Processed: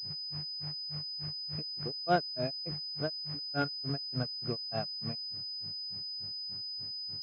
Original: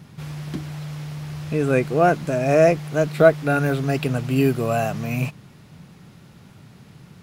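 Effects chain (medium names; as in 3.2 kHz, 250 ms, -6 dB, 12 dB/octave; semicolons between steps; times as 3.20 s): mains buzz 100 Hz, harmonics 7, -46 dBFS -8 dB/octave; granulator 165 ms, grains 3.4 per s, spray 100 ms, pitch spread up and down by 0 st; class-D stage that switches slowly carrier 5 kHz; trim -8.5 dB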